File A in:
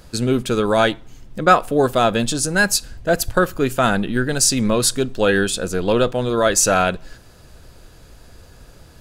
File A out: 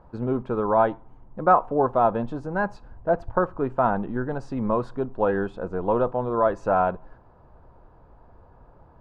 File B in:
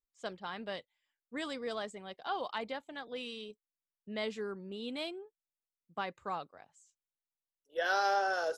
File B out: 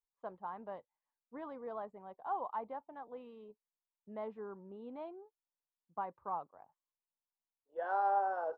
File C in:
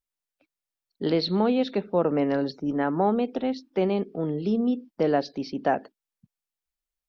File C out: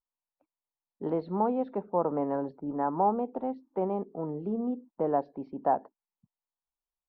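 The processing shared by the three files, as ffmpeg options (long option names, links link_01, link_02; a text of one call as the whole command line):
ffmpeg -i in.wav -af "lowpass=frequency=950:width_type=q:width=3.5,volume=-8dB" out.wav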